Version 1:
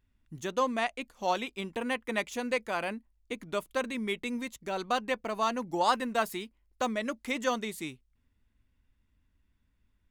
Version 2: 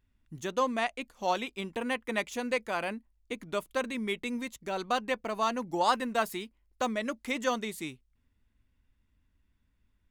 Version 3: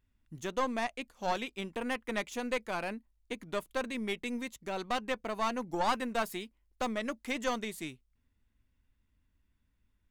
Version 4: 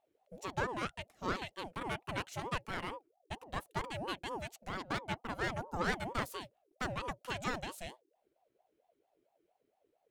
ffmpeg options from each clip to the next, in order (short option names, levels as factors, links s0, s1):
-af anull
-af "aeval=exprs='(tanh(12.6*val(0)+0.55)-tanh(0.55))/12.6':c=same"
-af "aeval=exprs='val(0)*sin(2*PI*550*n/s+550*0.4/4.4*sin(2*PI*4.4*n/s))':c=same,volume=0.841"